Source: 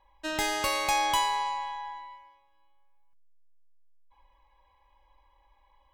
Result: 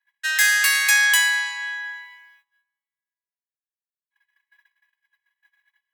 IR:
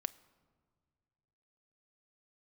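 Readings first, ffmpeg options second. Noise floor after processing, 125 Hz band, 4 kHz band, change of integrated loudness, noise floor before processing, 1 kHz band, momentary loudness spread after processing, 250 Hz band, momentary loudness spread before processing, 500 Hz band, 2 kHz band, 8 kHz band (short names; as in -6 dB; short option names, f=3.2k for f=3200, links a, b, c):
under -85 dBFS, n/a, +9.0 dB, +11.0 dB, -66 dBFS, -8.5 dB, 14 LU, under -35 dB, 16 LU, under -20 dB, +17.5 dB, +13.5 dB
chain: -filter_complex "[0:a]crystalizer=i=8.5:c=0,highpass=f=1.7k:t=q:w=16,agate=range=-23dB:threshold=-51dB:ratio=16:detection=peak,asplit=2[a][b];[1:a]atrim=start_sample=2205,asetrate=41895,aresample=44100[c];[b][c]afir=irnorm=-1:irlink=0,volume=-4.5dB[d];[a][d]amix=inputs=2:normalize=0,volume=-10dB"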